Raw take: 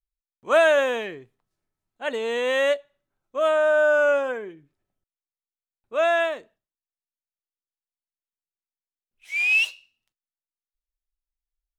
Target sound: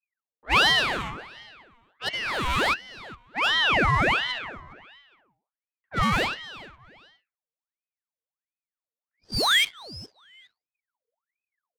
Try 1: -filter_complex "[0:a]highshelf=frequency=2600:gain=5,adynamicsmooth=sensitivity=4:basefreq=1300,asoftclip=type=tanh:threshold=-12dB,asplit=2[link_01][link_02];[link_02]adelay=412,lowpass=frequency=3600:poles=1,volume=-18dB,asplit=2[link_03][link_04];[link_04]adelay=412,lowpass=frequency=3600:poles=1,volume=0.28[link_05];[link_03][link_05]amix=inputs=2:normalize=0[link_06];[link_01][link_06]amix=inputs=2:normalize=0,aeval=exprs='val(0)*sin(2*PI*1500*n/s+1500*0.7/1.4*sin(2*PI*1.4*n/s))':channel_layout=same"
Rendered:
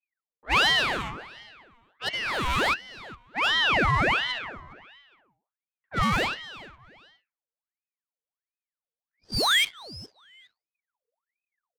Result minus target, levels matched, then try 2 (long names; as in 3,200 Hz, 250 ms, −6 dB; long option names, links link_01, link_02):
soft clipping: distortion +17 dB
-filter_complex "[0:a]highshelf=frequency=2600:gain=5,adynamicsmooth=sensitivity=4:basefreq=1300,asoftclip=type=tanh:threshold=-2dB,asplit=2[link_01][link_02];[link_02]adelay=412,lowpass=frequency=3600:poles=1,volume=-18dB,asplit=2[link_03][link_04];[link_04]adelay=412,lowpass=frequency=3600:poles=1,volume=0.28[link_05];[link_03][link_05]amix=inputs=2:normalize=0[link_06];[link_01][link_06]amix=inputs=2:normalize=0,aeval=exprs='val(0)*sin(2*PI*1500*n/s+1500*0.7/1.4*sin(2*PI*1.4*n/s))':channel_layout=same"